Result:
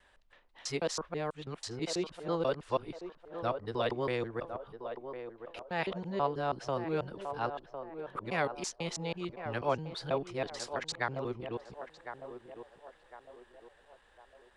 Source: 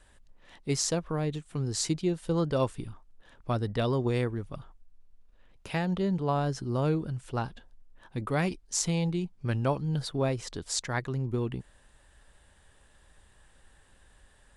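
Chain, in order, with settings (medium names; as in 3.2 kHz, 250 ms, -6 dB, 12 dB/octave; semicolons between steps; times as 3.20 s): time reversed locally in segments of 163 ms; three-band isolator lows -13 dB, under 390 Hz, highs -15 dB, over 4.7 kHz; band-passed feedback delay 1055 ms, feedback 46%, band-pass 640 Hz, level -7.5 dB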